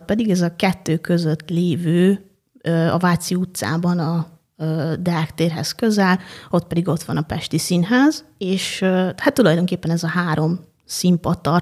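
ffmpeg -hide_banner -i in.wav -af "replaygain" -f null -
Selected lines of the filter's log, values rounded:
track_gain = -0.3 dB
track_peak = 0.601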